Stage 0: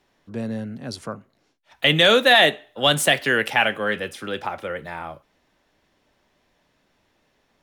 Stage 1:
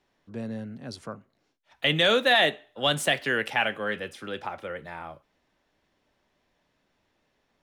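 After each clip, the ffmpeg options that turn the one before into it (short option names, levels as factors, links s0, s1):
-af "highshelf=f=11000:g=-8,volume=0.501"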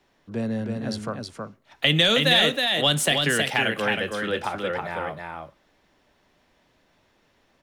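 -filter_complex "[0:a]acrossover=split=250|3000[s0][s1][s2];[s1]acompressor=threshold=0.0316:ratio=6[s3];[s0][s3][s2]amix=inputs=3:normalize=0,aecho=1:1:319:0.631,volume=2.24"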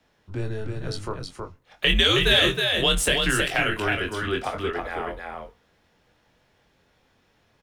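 -filter_complex "[0:a]afreqshift=-110,asplit=2[s0][s1];[s1]adelay=23,volume=0.501[s2];[s0][s2]amix=inputs=2:normalize=0,volume=0.891"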